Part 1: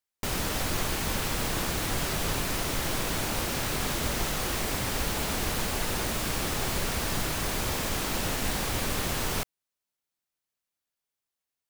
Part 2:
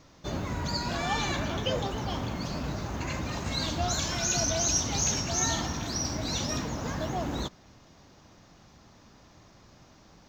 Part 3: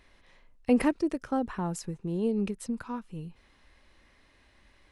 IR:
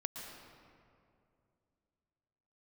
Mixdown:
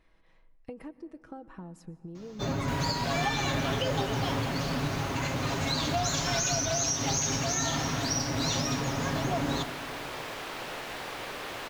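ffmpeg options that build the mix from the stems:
-filter_complex "[0:a]acrossover=split=320 4100:gain=0.0891 1 0.2[a][b][c];[a][b][c]amix=inputs=3:normalize=0,adelay=2450,volume=-4dB[d];[1:a]aecho=1:1:7.3:0.89,adelay=2150,volume=-2.5dB,asplit=2[e][f];[f]volume=-8dB[g];[2:a]highshelf=f=2.1k:g=-9,aecho=1:1:6.2:0.48,acompressor=threshold=-35dB:ratio=10,volume=-6.5dB,asplit=2[h][i];[i]volume=-11dB[j];[3:a]atrim=start_sample=2205[k];[g][j]amix=inputs=2:normalize=0[l];[l][k]afir=irnorm=-1:irlink=0[m];[d][e][h][m]amix=inputs=4:normalize=0,alimiter=limit=-18.5dB:level=0:latency=1:release=179"

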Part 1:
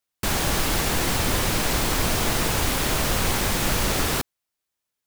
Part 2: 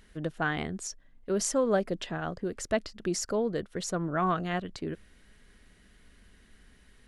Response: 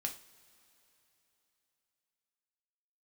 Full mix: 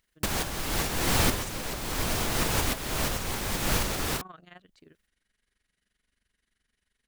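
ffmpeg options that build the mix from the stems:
-filter_complex "[0:a]volume=0.5dB[a];[1:a]tiltshelf=f=1.1k:g=-5,tremolo=f=23:d=0.788,volume=-15dB,asplit=2[b][c];[c]apad=whole_len=223512[d];[a][d]sidechaincompress=threshold=-53dB:ratio=8:attack=9.4:release=405[e];[e][b]amix=inputs=2:normalize=0"

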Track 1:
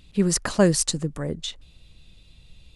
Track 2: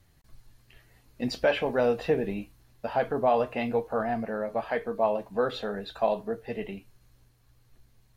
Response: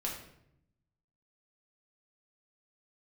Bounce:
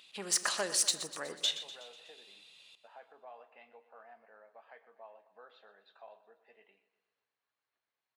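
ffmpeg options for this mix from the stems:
-filter_complex "[0:a]equalizer=f=3.1k:w=1.6:g=4,acompressor=threshold=-22dB:ratio=2.5,asoftclip=type=tanh:threshold=-18dB,volume=-2.5dB,asplit=3[a][b][c];[b]volume=-11dB[d];[c]volume=-11.5dB[e];[1:a]lowpass=3.2k,acompressor=threshold=-46dB:ratio=1.5,volume=-14.5dB,asplit=2[f][g];[g]volume=-16dB[h];[2:a]atrim=start_sample=2205[i];[d][i]afir=irnorm=-1:irlink=0[j];[e][h]amix=inputs=2:normalize=0,aecho=0:1:123|246|369|492|615|738|861|984:1|0.56|0.314|0.176|0.0983|0.0551|0.0308|0.0173[k];[a][f][j][k]amix=inputs=4:normalize=0,highpass=770"

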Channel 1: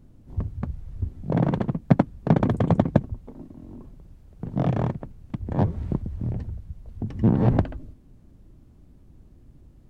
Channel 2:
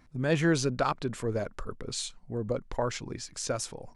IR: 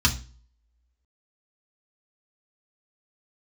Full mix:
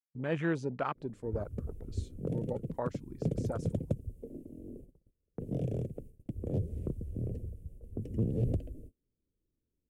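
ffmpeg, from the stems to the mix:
-filter_complex "[0:a]firequalizer=gain_entry='entry(180,0);entry(470,12);entry(990,-28);entry(2600,-9);entry(4000,-17);entry(9000,4)':delay=0.05:min_phase=1,acrossover=split=140|3000[a][b][c];[b]acompressor=threshold=-29dB:ratio=4[d];[a][d][c]amix=inputs=3:normalize=0,adynamicequalizer=threshold=0.00316:dfrequency=1600:dqfactor=0.7:tfrequency=1600:tqfactor=0.7:attack=5:release=100:ratio=0.375:range=3.5:mode=boostabove:tftype=highshelf,adelay=950,volume=-7.5dB[e];[1:a]afwtdn=0.0251,highpass=110,volume=-6dB,asplit=2[f][g];[g]apad=whole_len=482876[h];[e][h]sidechaincompress=threshold=-37dB:ratio=8:attack=44:release=418[i];[i][f]amix=inputs=2:normalize=0,agate=range=-27dB:threshold=-49dB:ratio=16:detection=peak"

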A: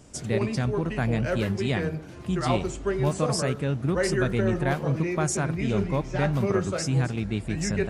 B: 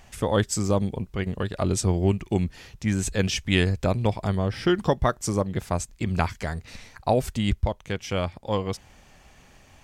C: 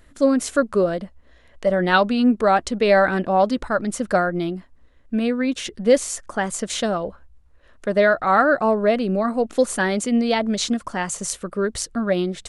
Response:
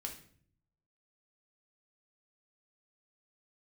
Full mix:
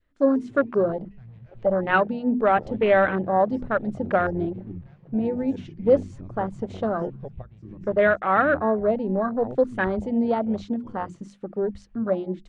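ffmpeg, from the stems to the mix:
-filter_complex "[0:a]asoftclip=type=hard:threshold=-26.5dB,adelay=200,volume=-12.5dB[a];[1:a]lowpass=f=2.3k:p=1,equalizer=f=680:t=o:w=0.62:g=-3,acompressor=mode=upward:threshold=-34dB:ratio=2.5,adelay=2350,volume=-12.5dB[b];[2:a]bandreject=f=60:t=h:w=6,bandreject=f=120:t=h:w=6,bandreject=f=180:t=h:w=6,bandreject=f=240:t=h:w=6,bandreject=f=300:t=h:w=6,bandreject=f=360:t=h:w=6,adynamicequalizer=threshold=0.0355:dfrequency=850:dqfactor=1.5:tfrequency=850:tqfactor=1.5:attack=5:release=100:ratio=0.375:range=2:mode=cutabove:tftype=bell,volume=-2dB[c];[a][b][c]amix=inputs=3:normalize=0,afwtdn=0.0501,lowpass=3.4k,bandreject=f=50:t=h:w=6,bandreject=f=100:t=h:w=6,bandreject=f=150:t=h:w=6,bandreject=f=200:t=h:w=6,bandreject=f=250:t=h:w=6"

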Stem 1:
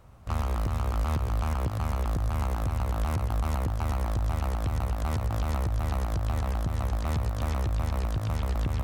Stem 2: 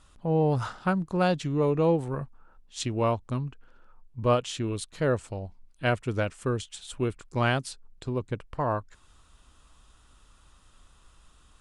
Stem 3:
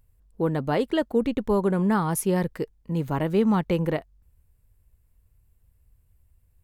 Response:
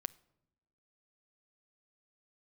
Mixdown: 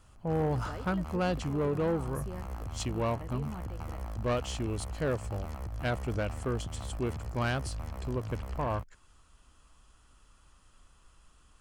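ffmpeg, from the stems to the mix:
-filter_complex "[0:a]volume=-9.5dB[a];[1:a]volume=-3dB,asplit=2[b][c];[2:a]volume=-17dB[d];[c]apad=whole_len=292745[e];[d][e]sidechaingate=range=-7dB:threshold=-52dB:ratio=16:detection=peak[f];[a][f]amix=inputs=2:normalize=0,bandreject=f=71.96:t=h:w=4,bandreject=f=143.92:t=h:w=4,alimiter=level_in=5.5dB:limit=-24dB:level=0:latency=1:release=121,volume=-5.5dB,volume=0dB[g];[b][g]amix=inputs=2:normalize=0,bandreject=f=3.7k:w=8,asoftclip=type=tanh:threshold=-23.5dB"

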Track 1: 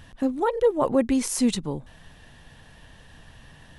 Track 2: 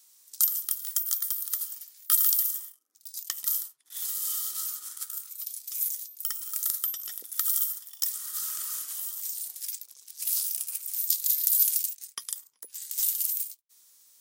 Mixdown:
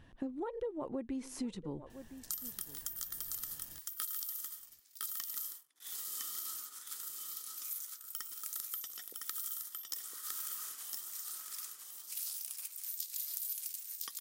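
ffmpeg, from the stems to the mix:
-filter_complex "[0:a]equalizer=f=330:w=2:g=6,volume=-11.5dB,asplit=2[a][b];[b]volume=-20.5dB[c];[1:a]adelay=1900,volume=-2.5dB,asplit=2[d][e];[e]volume=-5dB[f];[c][f]amix=inputs=2:normalize=0,aecho=0:1:1009:1[g];[a][d][g]amix=inputs=3:normalize=0,highshelf=f=4k:g=-8.5,acompressor=threshold=-36dB:ratio=6"

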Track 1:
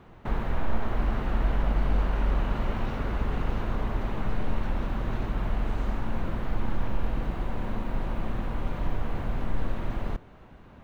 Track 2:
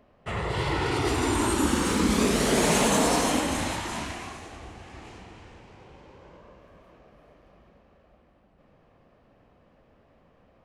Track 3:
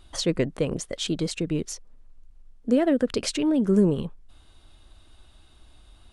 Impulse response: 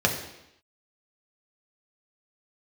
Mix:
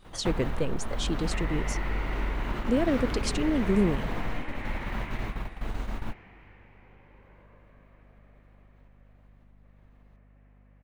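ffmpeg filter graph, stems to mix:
-filter_complex "[0:a]highshelf=f=3k:g=8.5,acompressor=threshold=-29dB:ratio=6,volume=2.5dB[a];[1:a]acompressor=threshold=-27dB:ratio=6,aeval=exprs='val(0)+0.00501*(sin(2*PI*50*n/s)+sin(2*PI*2*50*n/s)/2+sin(2*PI*3*50*n/s)/3+sin(2*PI*4*50*n/s)/4+sin(2*PI*5*50*n/s)/5)':c=same,lowpass=f=2.1k:t=q:w=3.1,adelay=1050,volume=-10dB[b];[2:a]volume=-4.5dB,asplit=2[c][d];[d]apad=whole_len=477757[e];[a][e]sidechaingate=range=-32dB:threshold=-55dB:ratio=16:detection=peak[f];[f][b][c]amix=inputs=3:normalize=0"

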